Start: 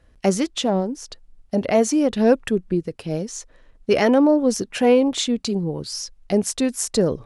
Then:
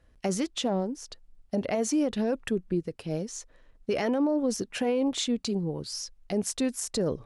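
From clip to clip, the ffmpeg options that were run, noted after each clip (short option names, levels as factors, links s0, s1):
-af "alimiter=limit=0.224:level=0:latency=1:release=33,volume=0.501"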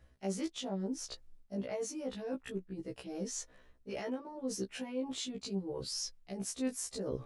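-af "areverse,acompressor=threshold=0.0178:ratio=12,areverse,afftfilt=real='re*1.73*eq(mod(b,3),0)':imag='im*1.73*eq(mod(b,3),0)':win_size=2048:overlap=0.75,volume=1.33"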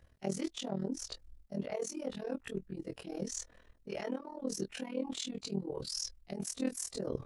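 -af "tremolo=f=40:d=0.889,volume=1.58"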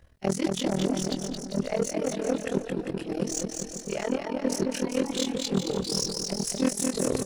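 -af "aeval=exprs='0.0944*(cos(1*acos(clip(val(0)/0.0944,-1,1)))-cos(1*PI/2))+0.0266*(cos(5*acos(clip(val(0)/0.0944,-1,1)))-cos(5*PI/2))+0.0211*(cos(7*acos(clip(val(0)/0.0944,-1,1)))-cos(7*PI/2))':c=same,aecho=1:1:220|396|536.8|649.4|739.6:0.631|0.398|0.251|0.158|0.1,volume=2.24"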